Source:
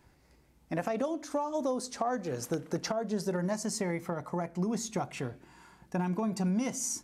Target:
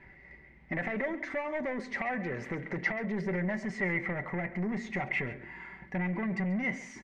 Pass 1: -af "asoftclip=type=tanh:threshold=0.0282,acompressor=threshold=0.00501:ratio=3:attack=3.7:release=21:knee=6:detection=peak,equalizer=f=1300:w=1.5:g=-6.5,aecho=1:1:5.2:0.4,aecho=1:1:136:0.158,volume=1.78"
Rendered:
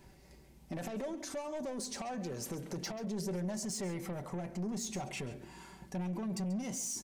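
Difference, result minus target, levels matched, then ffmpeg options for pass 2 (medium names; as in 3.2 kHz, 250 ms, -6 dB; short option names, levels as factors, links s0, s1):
2 kHz band -12.5 dB; compression: peak gain reduction +4.5 dB
-af "asoftclip=type=tanh:threshold=0.0282,acompressor=threshold=0.0106:ratio=3:attack=3.7:release=21:knee=6:detection=peak,lowpass=f=2000:t=q:w=12,equalizer=f=1300:w=1.5:g=-6.5,aecho=1:1:5.2:0.4,aecho=1:1:136:0.158,volume=1.78"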